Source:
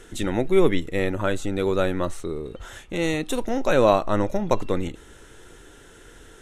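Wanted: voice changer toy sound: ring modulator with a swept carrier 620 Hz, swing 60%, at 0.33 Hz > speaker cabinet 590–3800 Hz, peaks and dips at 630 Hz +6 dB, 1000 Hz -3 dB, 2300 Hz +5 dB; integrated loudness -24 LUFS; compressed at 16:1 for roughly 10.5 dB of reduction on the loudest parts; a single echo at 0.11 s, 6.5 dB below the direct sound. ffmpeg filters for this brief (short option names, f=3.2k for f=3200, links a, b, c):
-af "acompressor=threshold=-22dB:ratio=16,aecho=1:1:110:0.473,aeval=exprs='val(0)*sin(2*PI*620*n/s+620*0.6/0.33*sin(2*PI*0.33*n/s))':c=same,highpass=590,equalizer=f=630:t=q:w=4:g=6,equalizer=f=1k:t=q:w=4:g=-3,equalizer=f=2.3k:t=q:w=4:g=5,lowpass=f=3.8k:w=0.5412,lowpass=f=3.8k:w=1.3066,volume=8.5dB"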